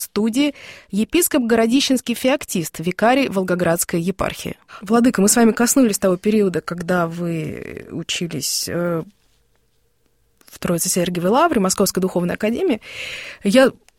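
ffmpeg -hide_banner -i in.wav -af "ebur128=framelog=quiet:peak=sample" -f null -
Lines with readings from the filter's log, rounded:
Integrated loudness:
  I:         -18.4 LUFS
  Threshold: -29.1 LUFS
Loudness range:
  LRA:         6.6 LU
  Threshold: -39.2 LUFS
  LRA low:   -23.8 LUFS
  LRA high:  -17.2 LUFS
Sample peak:
  Peak:       -2.3 dBFS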